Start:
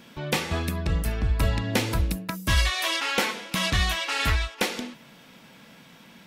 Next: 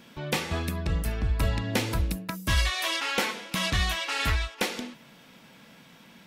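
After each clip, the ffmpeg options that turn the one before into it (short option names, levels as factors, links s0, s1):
-af "acontrast=32,volume=0.422"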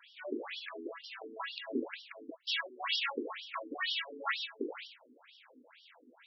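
-af "aeval=exprs='val(0)+0.00631*(sin(2*PI*50*n/s)+sin(2*PI*2*50*n/s)/2+sin(2*PI*3*50*n/s)/3+sin(2*PI*4*50*n/s)/4+sin(2*PI*5*50*n/s)/5)':c=same,afftfilt=real='re*between(b*sr/1024,310*pow(4100/310,0.5+0.5*sin(2*PI*2.1*pts/sr))/1.41,310*pow(4100/310,0.5+0.5*sin(2*PI*2.1*pts/sr))*1.41)':imag='im*between(b*sr/1024,310*pow(4100/310,0.5+0.5*sin(2*PI*2.1*pts/sr))/1.41,310*pow(4100/310,0.5+0.5*sin(2*PI*2.1*pts/sr))*1.41)':win_size=1024:overlap=0.75"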